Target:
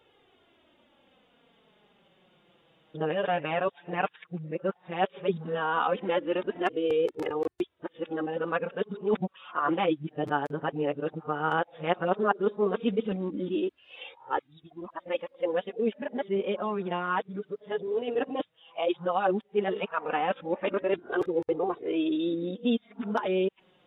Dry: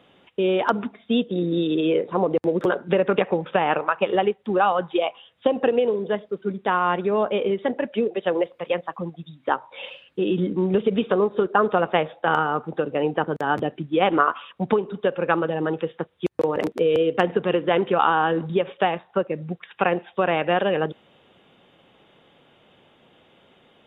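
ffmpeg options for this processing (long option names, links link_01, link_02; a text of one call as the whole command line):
ffmpeg -i in.wav -af "areverse,flanger=delay=2.2:depth=5.1:regen=1:speed=0.14:shape=triangular,volume=-4.5dB" out.wav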